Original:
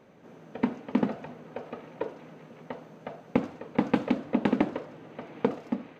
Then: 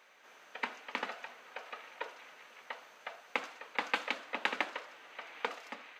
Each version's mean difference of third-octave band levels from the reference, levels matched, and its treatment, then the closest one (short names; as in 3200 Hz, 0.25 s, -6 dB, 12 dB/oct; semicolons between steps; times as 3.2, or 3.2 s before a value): 12.5 dB: HPF 1500 Hz 12 dB/oct; gain +6 dB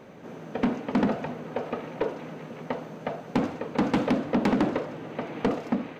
5.0 dB: soft clip -27 dBFS, distortion -5 dB; gain +9 dB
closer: second